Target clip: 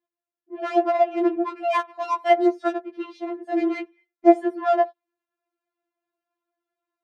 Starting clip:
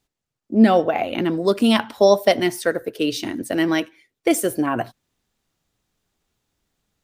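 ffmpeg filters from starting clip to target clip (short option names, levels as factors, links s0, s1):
-filter_complex "[0:a]lowpass=1500,asplit=2[s0][s1];[s1]adynamicsmooth=sensitivity=1:basefreq=700,volume=1.19[s2];[s0][s2]amix=inputs=2:normalize=0,highpass=530,afftfilt=real='re*4*eq(mod(b,16),0)':imag='im*4*eq(mod(b,16),0)':win_size=2048:overlap=0.75,volume=0.891"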